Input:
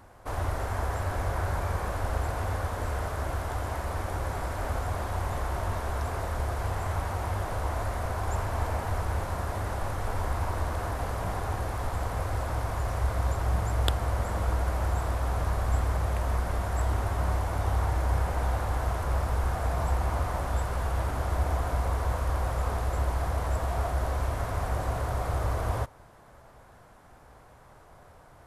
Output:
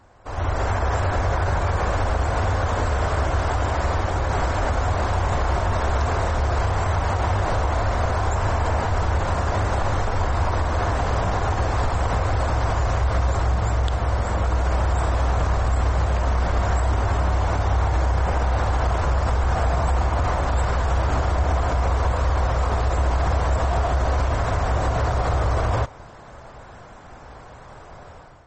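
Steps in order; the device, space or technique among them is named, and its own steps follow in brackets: low-bitrate web radio (AGC gain up to 12 dB; limiter -12.5 dBFS, peak gain reduction 10.5 dB; MP3 32 kbps 48000 Hz)

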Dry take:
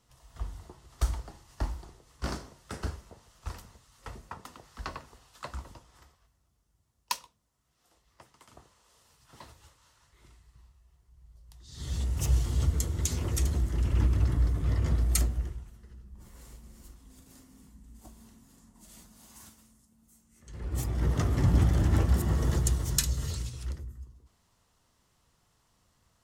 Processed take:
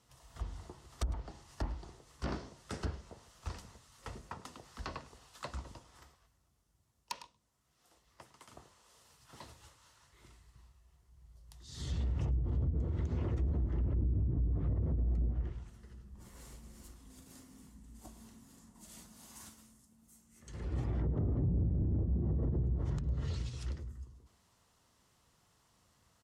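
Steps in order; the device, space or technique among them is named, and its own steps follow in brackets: HPF 68 Hz 6 dB/oct; treble ducked by the level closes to 340 Hz, closed at -23.5 dBFS; dynamic EQ 1300 Hz, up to -4 dB, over -54 dBFS, Q 0.71; echo 0.105 s -19.5 dB; soft clipper into limiter (soft clip -21 dBFS, distortion -18 dB; limiter -26.5 dBFS, peak gain reduction 5 dB)

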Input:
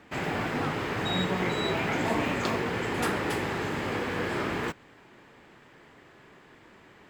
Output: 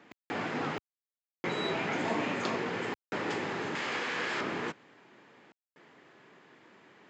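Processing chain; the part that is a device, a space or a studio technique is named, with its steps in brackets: call with lost packets (HPF 150 Hz 12 dB/oct; downsampling 16000 Hz; packet loss packets of 60 ms bursts); HPF 93 Hz; 3.75–4.41 tilt shelf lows -7 dB, about 800 Hz; gain -3.5 dB

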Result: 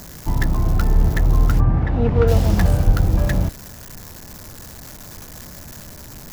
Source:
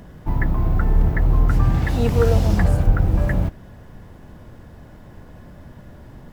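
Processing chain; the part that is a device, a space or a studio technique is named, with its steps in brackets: budget class-D amplifier (switching dead time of 0.15 ms; switching spikes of -20 dBFS); 1.59–2.27 LPF 1300 Hz -> 2100 Hz 12 dB/oct; gain +1 dB

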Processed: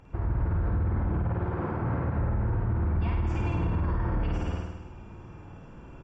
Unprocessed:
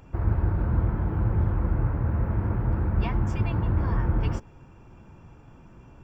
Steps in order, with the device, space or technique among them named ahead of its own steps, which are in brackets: 1.29–2.13 HPF 310 Hz -> 90 Hz 12 dB/oct; tone controls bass -1 dB, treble -5 dB; flutter echo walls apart 9 m, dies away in 1.1 s; echo 0.221 s -11 dB; low-bitrate web radio (AGC gain up to 4 dB; limiter -17.5 dBFS, peak gain reduction 11.5 dB; gain -2.5 dB; MP3 40 kbps 24000 Hz)

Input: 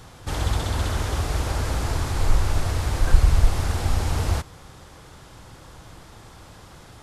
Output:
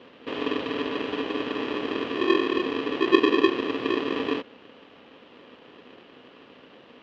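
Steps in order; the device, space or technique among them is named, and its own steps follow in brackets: ring modulator pedal into a guitar cabinet (polarity switched at an audio rate 360 Hz; speaker cabinet 110–3700 Hz, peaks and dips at 250 Hz +4 dB, 540 Hz +6 dB, 2900 Hz +10 dB); gain -7 dB

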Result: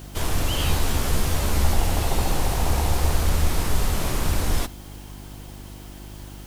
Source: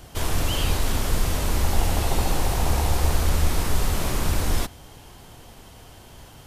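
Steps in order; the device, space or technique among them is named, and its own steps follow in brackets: video cassette with head-switching buzz (buzz 50 Hz, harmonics 7, -40 dBFS -5 dB/oct; white noise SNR 30 dB); 0.58–1.74 doubler 14 ms -5 dB

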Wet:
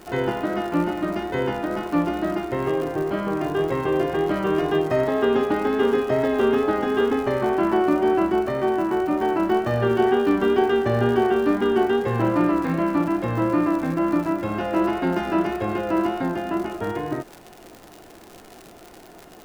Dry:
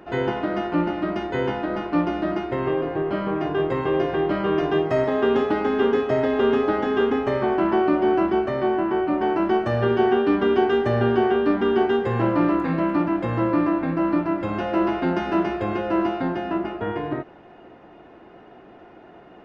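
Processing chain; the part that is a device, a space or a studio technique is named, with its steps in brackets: vinyl LP (wow and flutter 24 cents; crackle 130/s -31 dBFS; pink noise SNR 33 dB)

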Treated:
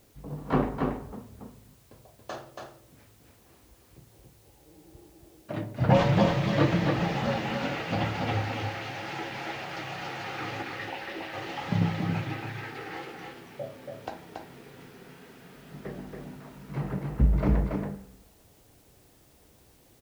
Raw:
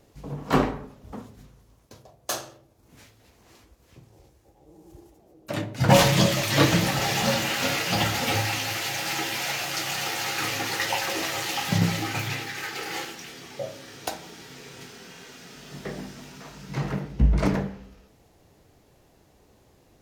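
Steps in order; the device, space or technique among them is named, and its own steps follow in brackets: 10.62–11.34 graphic EQ 125/500/1000/8000 Hz -10/-4/-6/-10 dB; cassette deck with a dirty head (tape spacing loss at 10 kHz 32 dB; wow and flutter; white noise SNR 32 dB); echo 0.28 s -4 dB; gain -2.5 dB

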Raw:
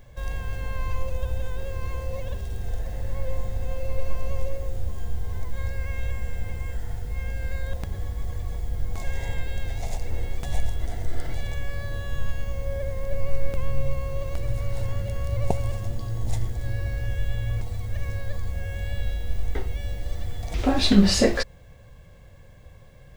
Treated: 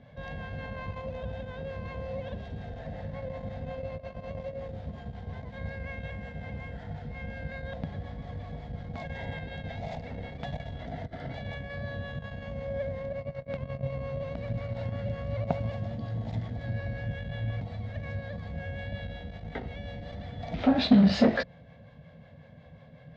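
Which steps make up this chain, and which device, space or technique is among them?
guitar amplifier with harmonic tremolo (harmonic tremolo 5.5 Hz, depth 50%, crossover 540 Hz; soft clip -19 dBFS, distortion -14 dB; speaker cabinet 110–3800 Hz, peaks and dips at 160 Hz +8 dB, 240 Hz +8 dB, 360 Hz -9 dB, 660 Hz +6 dB, 1100 Hz -4 dB, 2700 Hz -4 dB); gain +2 dB

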